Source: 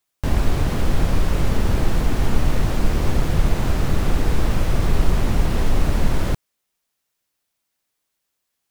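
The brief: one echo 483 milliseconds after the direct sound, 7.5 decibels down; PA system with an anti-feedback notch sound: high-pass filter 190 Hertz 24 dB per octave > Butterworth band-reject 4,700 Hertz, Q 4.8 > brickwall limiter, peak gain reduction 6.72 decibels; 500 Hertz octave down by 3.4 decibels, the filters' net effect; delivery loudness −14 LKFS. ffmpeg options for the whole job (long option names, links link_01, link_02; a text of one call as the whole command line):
ffmpeg -i in.wav -af "highpass=frequency=190:width=0.5412,highpass=frequency=190:width=1.3066,asuperstop=centerf=4700:order=8:qfactor=4.8,equalizer=frequency=500:width_type=o:gain=-4.5,aecho=1:1:483:0.422,volume=18dB,alimiter=limit=-4.5dB:level=0:latency=1" out.wav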